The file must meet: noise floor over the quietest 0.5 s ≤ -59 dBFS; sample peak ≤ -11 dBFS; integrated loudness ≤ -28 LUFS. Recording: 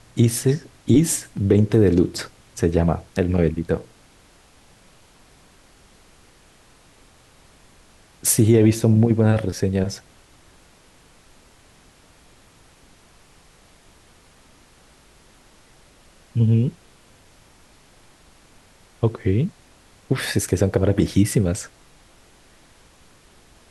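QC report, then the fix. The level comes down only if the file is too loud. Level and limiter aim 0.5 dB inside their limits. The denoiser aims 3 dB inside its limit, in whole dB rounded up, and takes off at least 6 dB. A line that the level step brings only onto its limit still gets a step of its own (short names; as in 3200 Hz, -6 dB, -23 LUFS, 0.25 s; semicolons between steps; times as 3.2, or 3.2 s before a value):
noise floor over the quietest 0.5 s -53 dBFS: fail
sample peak -5.0 dBFS: fail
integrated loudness -20.0 LUFS: fail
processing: gain -8.5 dB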